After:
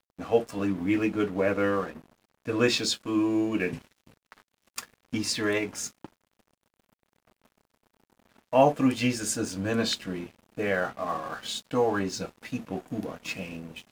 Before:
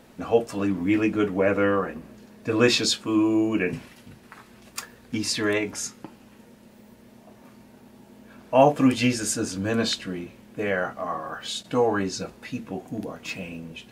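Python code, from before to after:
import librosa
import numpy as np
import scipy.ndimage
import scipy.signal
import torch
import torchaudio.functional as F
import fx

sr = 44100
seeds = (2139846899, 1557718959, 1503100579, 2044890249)

p1 = fx.rider(x, sr, range_db=5, speed_s=0.5)
p2 = x + (p1 * librosa.db_to_amplitude(-1.0))
p3 = np.sign(p2) * np.maximum(np.abs(p2) - 10.0 ** (-38.0 / 20.0), 0.0)
y = p3 * librosa.db_to_amplitude(-8.0)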